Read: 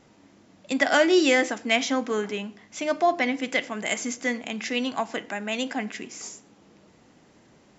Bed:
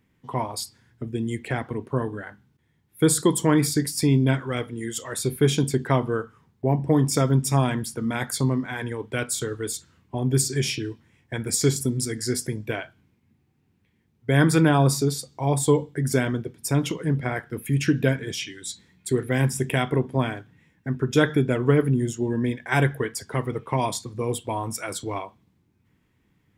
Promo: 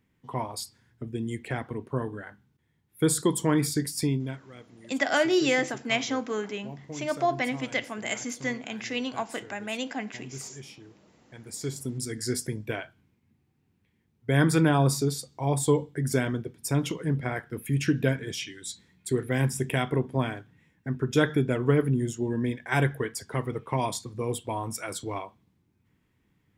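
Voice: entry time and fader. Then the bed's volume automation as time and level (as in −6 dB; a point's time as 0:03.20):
4.20 s, −4.0 dB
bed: 0:04.03 −4.5 dB
0:04.46 −20 dB
0:11.19 −20 dB
0:12.21 −3.5 dB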